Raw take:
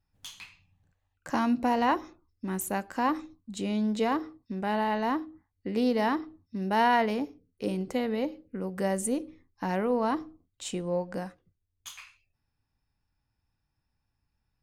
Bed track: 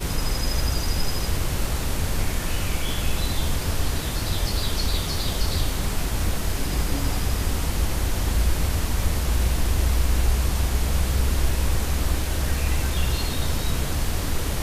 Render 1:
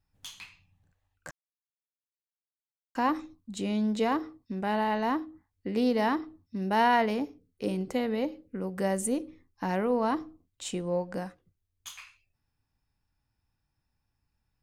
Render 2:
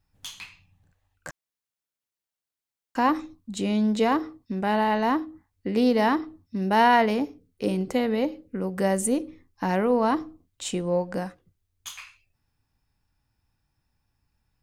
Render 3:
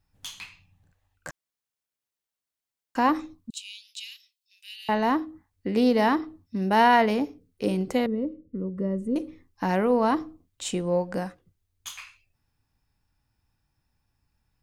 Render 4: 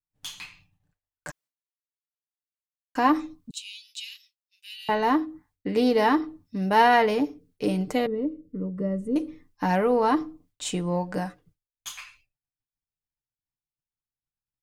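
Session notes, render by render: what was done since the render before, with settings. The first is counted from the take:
1.31–2.95 mute
gain +5 dB
3.5–4.89 Chebyshev high-pass 2600 Hz, order 5; 8.06–9.16 running mean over 55 samples
comb 6.7 ms, depth 53%; expander -55 dBFS

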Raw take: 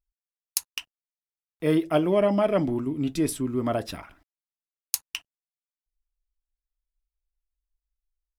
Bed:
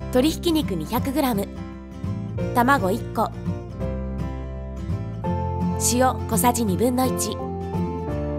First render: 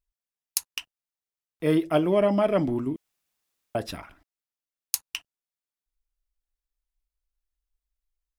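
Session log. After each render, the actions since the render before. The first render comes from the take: 2.96–3.75 room tone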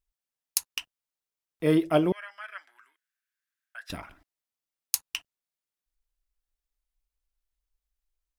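2.12–3.9 ladder high-pass 1500 Hz, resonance 80%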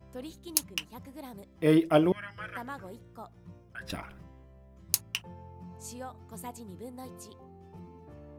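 add bed -23 dB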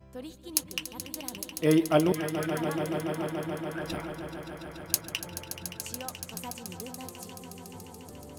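swelling echo 0.143 s, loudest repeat 5, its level -12 dB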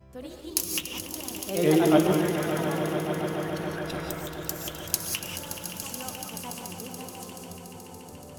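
non-linear reverb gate 0.22 s rising, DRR 3 dB; echoes that change speed 92 ms, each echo +2 st, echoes 2, each echo -6 dB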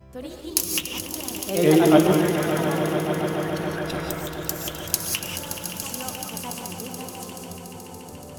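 gain +4.5 dB; limiter -1 dBFS, peak gain reduction 1 dB

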